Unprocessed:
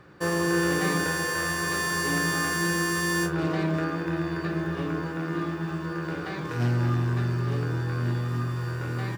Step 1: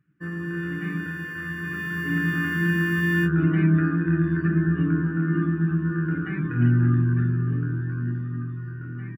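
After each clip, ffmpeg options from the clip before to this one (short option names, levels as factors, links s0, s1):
-af "afftdn=nr=17:nf=-36,firequalizer=gain_entry='entry(100,0);entry(150,6);entry(270,6);entry(500,-18);entry(910,-16);entry(1400,1);entry(2900,1);entry(4300,-22);entry(9400,-22);entry(14000,0)':delay=0.05:min_phase=1,dynaudnorm=f=350:g=13:m=4.22,volume=0.473"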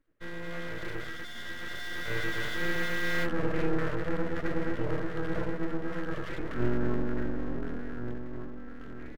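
-af "aeval=exprs='abs(val(0))':c=same,volume=0.562"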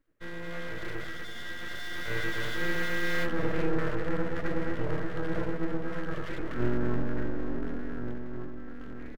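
-filter_complex "[0:a]asplit=2[s0][s1];[s1]adelay=332.4,volume=0.282,highshelf=f=4000:g=-7.48[s2];[s0][s2]amix=inputs=2:normalize=0"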